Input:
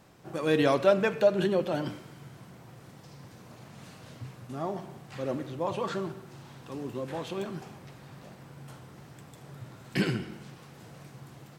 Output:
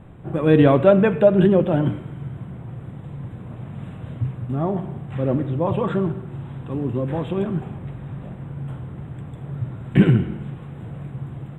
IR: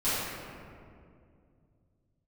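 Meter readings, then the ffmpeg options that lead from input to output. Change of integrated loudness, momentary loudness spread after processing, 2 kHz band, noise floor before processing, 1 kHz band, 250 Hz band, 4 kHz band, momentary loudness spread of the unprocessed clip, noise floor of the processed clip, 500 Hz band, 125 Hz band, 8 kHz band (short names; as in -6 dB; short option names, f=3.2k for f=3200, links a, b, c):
+9.5 dB, 19 LU, +4.0 dB, -52 dBFS, +6.0 dB, +13.0 dB, -0.5 dB, 25 LU, -38 dBFS, +8.5 dB, +16.5 dB, under -10 dB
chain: -af "asuperstop=centerf=5300:order=12:qfactor=1.5,aemphasis=mode=reproduction:type=riaa,volume=6dB"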